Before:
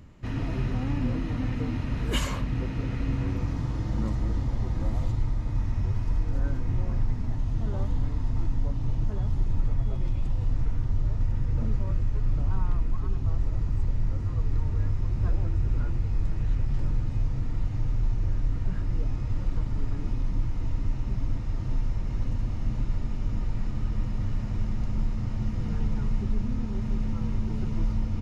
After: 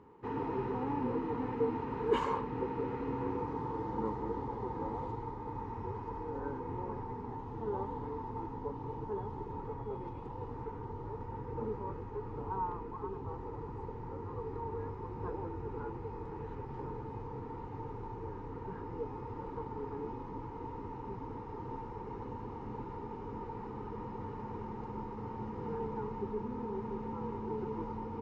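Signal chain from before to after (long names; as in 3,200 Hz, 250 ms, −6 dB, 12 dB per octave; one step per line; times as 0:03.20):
pair of resonant band-passes 630 Hz, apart 1 octave
level +11 dB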